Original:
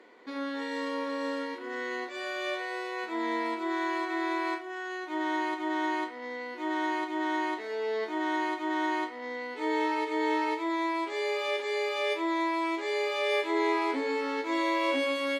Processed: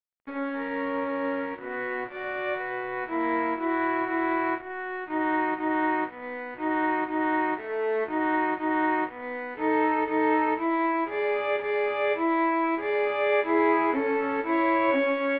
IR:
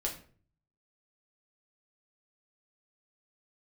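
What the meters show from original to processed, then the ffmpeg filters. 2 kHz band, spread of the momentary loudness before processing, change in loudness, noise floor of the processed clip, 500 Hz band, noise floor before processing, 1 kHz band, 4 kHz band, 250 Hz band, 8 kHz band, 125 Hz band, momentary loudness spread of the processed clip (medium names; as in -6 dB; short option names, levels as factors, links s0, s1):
+3.5 dB, 8 LU, +4.5 dB, -40 dBFS, +4.5 dB, -41 dBFS, +5.0 dB, -7.5 dB, +4.5 dB, under -25 dB, no reading, 9 LU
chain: -af "aeval=exprs='sgn(val(0))*max(abs(val(0))-0.00531,0)':c=same,lowpass=f=2300:w=0.5412,lowpass=f=2300:w=1.3066,volume=2"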